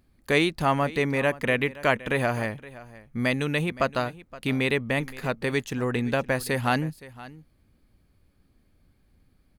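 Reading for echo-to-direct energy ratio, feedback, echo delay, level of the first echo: -18.5 dB, no regular repeats, 519 ms, -18.5 dB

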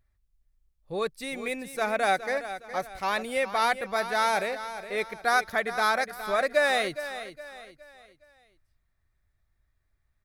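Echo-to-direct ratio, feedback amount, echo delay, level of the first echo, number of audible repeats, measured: -11.5 dB, 39%, 414 ms, -12.0 dB, 3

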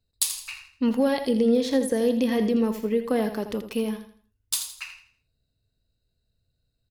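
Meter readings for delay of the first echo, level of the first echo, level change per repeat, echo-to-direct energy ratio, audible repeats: 82 ms, -10.0 dB, -9.5 dB, -9.5 dB, 3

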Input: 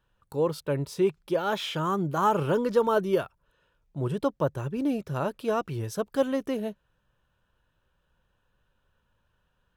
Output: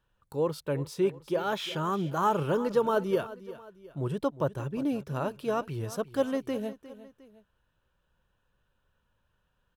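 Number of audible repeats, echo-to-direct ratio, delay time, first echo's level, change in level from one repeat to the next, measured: 2, -15.0 dB, 356 ms, -16.0 dB, -7.0 dB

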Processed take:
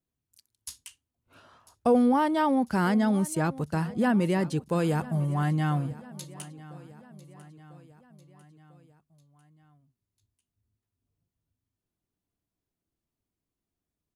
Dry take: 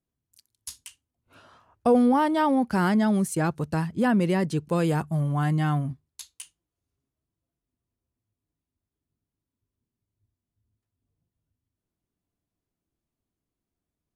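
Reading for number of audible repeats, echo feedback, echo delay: 3, 54%, 997 ms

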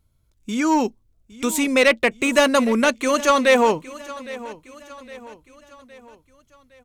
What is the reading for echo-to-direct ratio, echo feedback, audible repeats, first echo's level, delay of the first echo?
-17.0 dB, 48%, 3, -18.0 dB, 812 ms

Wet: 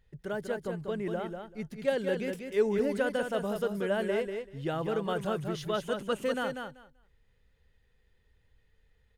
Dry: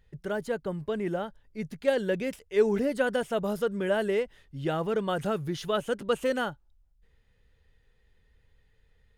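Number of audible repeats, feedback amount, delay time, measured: 2, 16%, 193 ms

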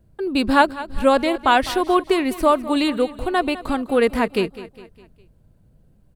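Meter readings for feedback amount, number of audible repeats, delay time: 46%, 3, 204 ms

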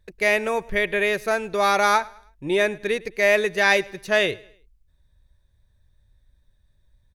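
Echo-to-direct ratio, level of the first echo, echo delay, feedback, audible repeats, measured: -22.5 dB, -23.0 dB, 106 ms, 39%, 2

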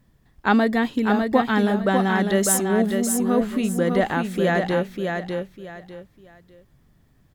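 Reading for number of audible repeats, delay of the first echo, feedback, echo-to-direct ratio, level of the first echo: 3, 600 ms, 26%, -4.5 dB, -5.0 dB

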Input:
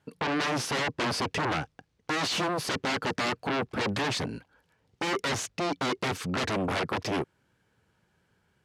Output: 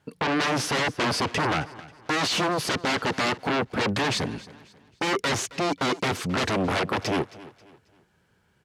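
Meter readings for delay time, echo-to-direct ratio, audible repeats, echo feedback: 269 ms, -18.5 dB, 2, 36%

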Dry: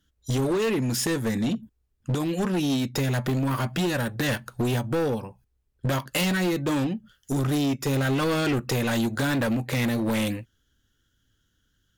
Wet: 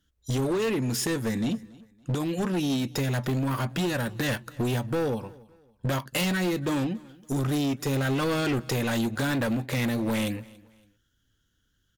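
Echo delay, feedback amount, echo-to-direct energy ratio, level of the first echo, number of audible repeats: 281 ms, 34%, -22.5 dB, -23.0 dB, 2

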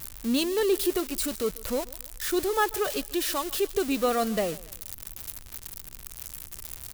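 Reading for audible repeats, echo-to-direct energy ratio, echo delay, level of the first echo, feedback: 2, -20.5 dB, 141 ms, -21.0 dB, 36%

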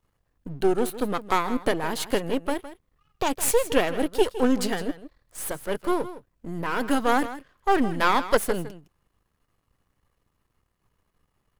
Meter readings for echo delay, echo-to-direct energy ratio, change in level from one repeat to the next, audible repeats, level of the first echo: 161 ms, -14.0 dB, no regular repeats, 1, -14.0 dB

